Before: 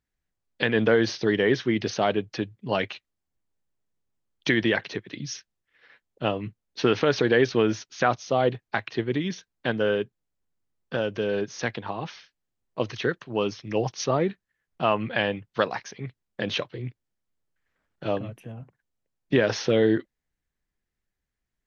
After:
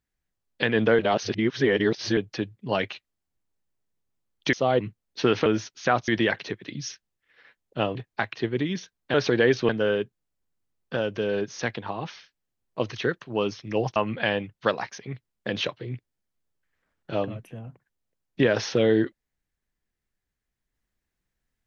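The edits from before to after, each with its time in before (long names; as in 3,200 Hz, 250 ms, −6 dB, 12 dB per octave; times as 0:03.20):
0:00.99–0:02.17: reverse
0:04.53–0:06.40: swap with 0:08.23–0:08.50
0:07.06–0:07.61: move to 0:09.69
0:13.96–0:14.89: remove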